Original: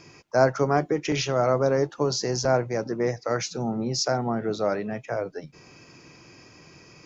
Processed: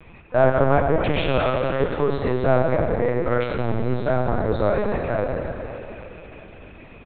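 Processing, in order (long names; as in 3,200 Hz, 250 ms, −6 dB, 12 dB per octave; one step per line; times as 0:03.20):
0:01.38–0:01.81: high-pass filter 1,400 Hz 6 dB per octave
in parallel at −3.5 dB: soft clipping −23.5 dBFS, distortion −8 dB
on the sum: repeating echo 96 ms, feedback 59%, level −16 dB
dense smooth reverb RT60 3.5 s, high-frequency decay 0.9×, DRR 1 dB
linear-prediction vocoder at 8 kHz pitch kept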